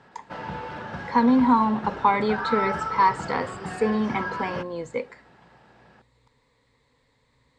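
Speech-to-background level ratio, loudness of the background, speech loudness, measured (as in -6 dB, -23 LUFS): 8.5 dB, -32.5 LUFS, -24.0 LUFS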